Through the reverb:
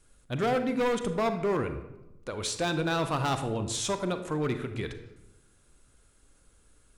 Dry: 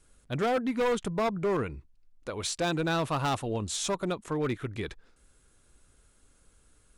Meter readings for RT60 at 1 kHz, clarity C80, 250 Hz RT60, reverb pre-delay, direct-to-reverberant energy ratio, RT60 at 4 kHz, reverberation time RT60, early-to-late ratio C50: 0.90 s, 12.0 dB, 1.2 s, 32 ms, 8.0 dB, 0.60 s, 0.95 s, 9.5 dB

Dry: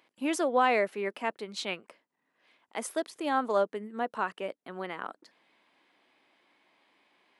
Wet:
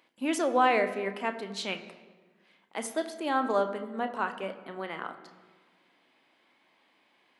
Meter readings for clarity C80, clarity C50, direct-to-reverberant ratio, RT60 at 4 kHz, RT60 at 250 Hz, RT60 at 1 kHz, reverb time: 13.0 dB, 11.5 dB, 7.0 dB, 1.0 s, 1.6 s, 1.3 s, 1.4 s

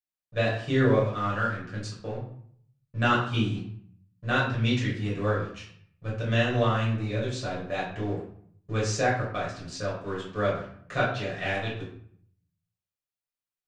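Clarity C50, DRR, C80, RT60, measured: 4.0 dB, −8.0 dB, 8.0 dB, 0.60 s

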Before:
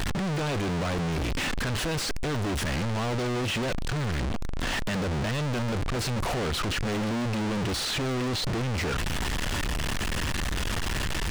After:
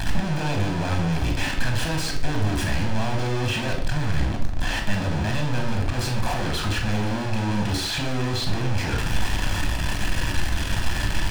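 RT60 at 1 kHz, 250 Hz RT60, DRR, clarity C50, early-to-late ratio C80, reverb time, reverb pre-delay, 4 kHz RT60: 0.55 s, 0.75 s, 1.5 dB, 6.5 dB, 10.5 dB, 0.60 s, 19 ms, 0.45 s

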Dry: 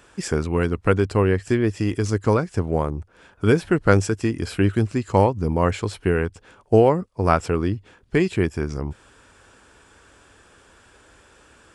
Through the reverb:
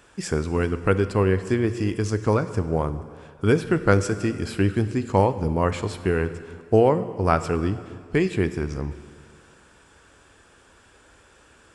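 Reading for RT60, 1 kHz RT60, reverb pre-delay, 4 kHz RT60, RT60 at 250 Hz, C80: 2.0 s, 2.0 s, 6 ms, 1.9 s, 2.0 s, 13.5 dB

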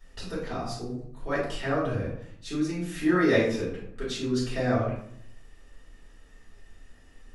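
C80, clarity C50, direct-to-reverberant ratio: 6.5 dB, 3.0 dB, −8.0 dB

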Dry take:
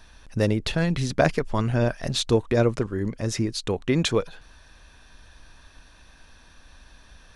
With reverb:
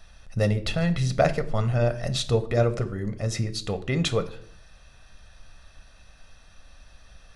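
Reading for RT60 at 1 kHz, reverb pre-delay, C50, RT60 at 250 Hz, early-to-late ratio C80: 0.50 s, 6 ms, 16.0 dB, 0.70 s, 19.5 dB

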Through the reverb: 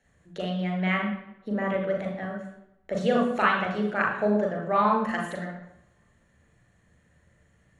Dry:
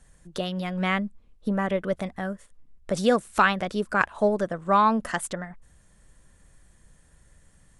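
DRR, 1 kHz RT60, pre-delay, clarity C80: 0.0 dB, 0.85 s, 37 ms, 7.5 dB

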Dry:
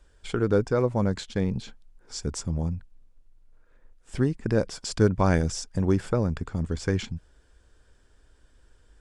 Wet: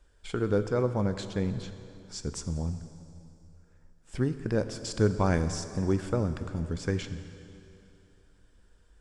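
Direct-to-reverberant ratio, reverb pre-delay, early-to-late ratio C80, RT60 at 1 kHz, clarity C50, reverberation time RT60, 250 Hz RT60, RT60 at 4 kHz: 9.0 dB, 4 ms, 11.0 dB, 2.7 s, 10.5 dB, 2.7 s, 2.8 s, 2.6 s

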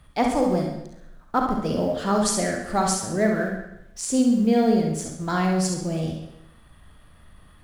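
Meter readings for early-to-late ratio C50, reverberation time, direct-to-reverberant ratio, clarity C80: 2.0 dB, 0.80 s, 1.0 dB, 7.5 dB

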